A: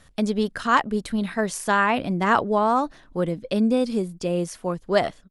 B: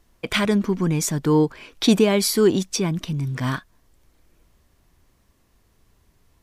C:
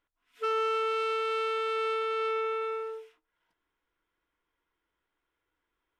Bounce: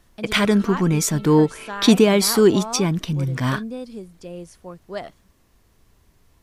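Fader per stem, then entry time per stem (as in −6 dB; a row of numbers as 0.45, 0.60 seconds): −11.0, +2.5, −17.0 decibels; 0.00, 0.00, 0.00 seconds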